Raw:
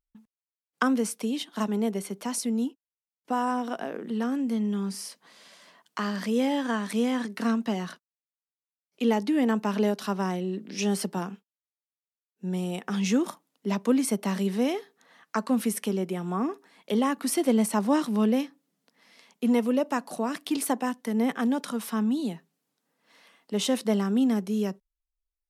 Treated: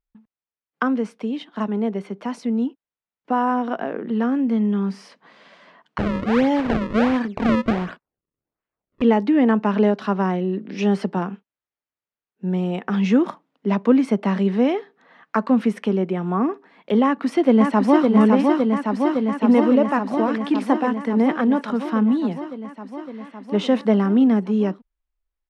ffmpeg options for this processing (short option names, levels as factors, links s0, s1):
-filter_complex "[0:a]asettb=1/sr,asplit=3[s0][s1][s2];[s0]atrim=end=5.984[s3];[s1]atrim=start=5.98:end=9.02,asetpts=PTS-STARTPTS,afade=t=in:d=0.004:c=qsin,afade=t=out:st=3.036:d=0.004:c=qsin,acrusher=samples=33:mix=1:aa=0.000001:lfo=1:lforange=52.8:lforate=1.4[s4];[s2]atrim=start=9.016[s5];[s3][s4]acrossfade=d=0.004:c1=hsin:c2=qsin[s6];[s6][s5]acrossfade=d=0.004:c1=qsin:c2=hsin,asplit=2[s7][s8];[s8]afade=t=in:st=17.04:d=0.01,afade=t=out:st=18.09:d=0.01,aecho=0:1:560|1120|1680|2240|2800|3360|3920|4480|5040|5600|6160|6720:0.707946|0.566357|0.453085|0.362468|0.289975|0.23198|0.185584|0.148467|0.118774|0.0950189|0.0760151|0.0608121[s9];[s7][s9]amix=inputs=2:normalize=0,lowpass=2300,dynaudnorm=f=160:g=31:m=1.68,volume=1.41"